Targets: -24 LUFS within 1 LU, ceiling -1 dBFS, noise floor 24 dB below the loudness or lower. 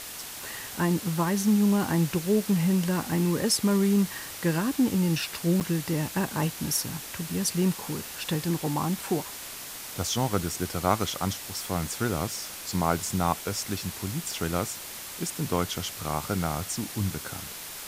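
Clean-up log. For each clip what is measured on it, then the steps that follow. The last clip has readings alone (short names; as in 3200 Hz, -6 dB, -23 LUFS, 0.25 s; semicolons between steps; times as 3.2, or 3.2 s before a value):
dropouts 1; longest dropout 8.9 ms; noise floor -40 dBFS; noise floor target -52 dBFS; loudness -28.0 LUFS; peak -6.5 dBFS; loudness target -24.0 LUFS
-> interpolate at 5.6, 8.9 ms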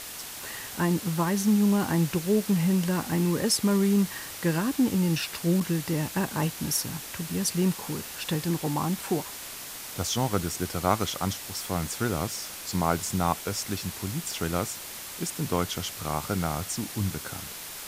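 dropouts 0; noise floor -40 dBFS; noise floor target -52 dBFS
-> denoiser 12 dB, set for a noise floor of -40 dBFS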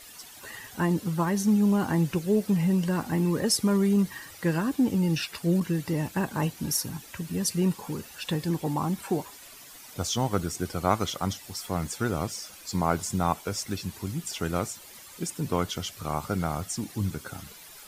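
noise floor -48 dBFS; noise floor target -52 dBFS
-> denoiser 6 dB, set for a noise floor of -48 dBFS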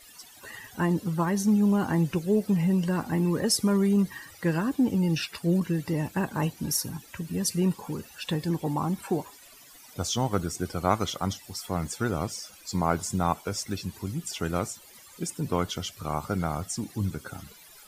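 noise floor -51 dBFS; noise floor target -52 dBFS
-> denoiser 6 dB, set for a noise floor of -51 dBFS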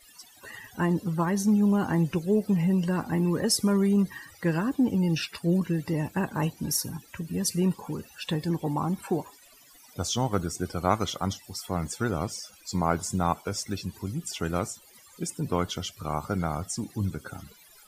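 noise floor -55 dBFS; loudness -28.0 LUFS; peak -7.0 dBFS; loudness target -24.0 LUFS
-> gain +4 dB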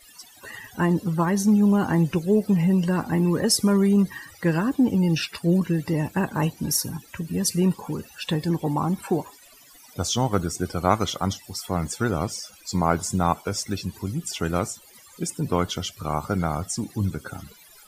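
loudness -24.0 LUFS; peak -3.0 dBFS; noise floor -51 dBFS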